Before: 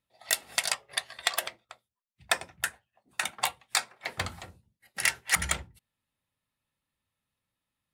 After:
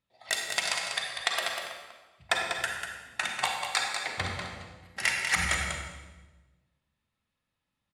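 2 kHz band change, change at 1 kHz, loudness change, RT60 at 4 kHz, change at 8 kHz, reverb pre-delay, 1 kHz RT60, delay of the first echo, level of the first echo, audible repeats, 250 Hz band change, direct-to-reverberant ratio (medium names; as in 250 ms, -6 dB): +2.5 dB, +2.5 dB, +0.5 dB, 1.0 s, -3.0 dB, 35 ms, 1.1 s, 194 ms, -6.5 dB, 1, +3.5 dB, 0.0 dB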